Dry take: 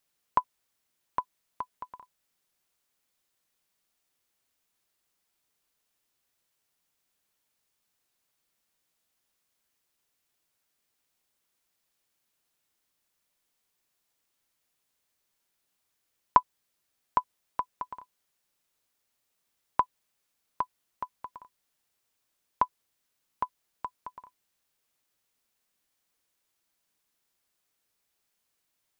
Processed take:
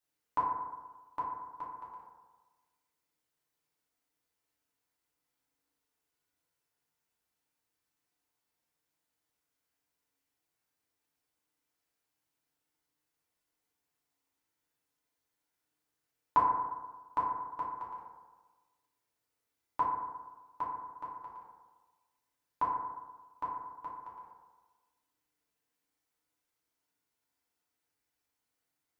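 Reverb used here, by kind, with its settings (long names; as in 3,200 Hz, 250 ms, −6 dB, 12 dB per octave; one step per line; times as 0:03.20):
feedback delay network reverb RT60 1.3 s, low-frequency decay 0.95×, high-frequency decay 0.3×, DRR −7 dB
level −12 dB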